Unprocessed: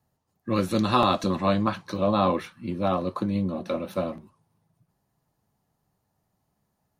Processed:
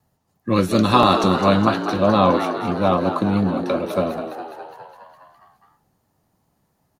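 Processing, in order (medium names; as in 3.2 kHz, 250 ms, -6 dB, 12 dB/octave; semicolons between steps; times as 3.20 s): frequency-shifting echo 206 ms, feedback 63%, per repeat +77 Hz, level -9 dB; vibrato 3 Hz 29 cents; trim +6.5 dB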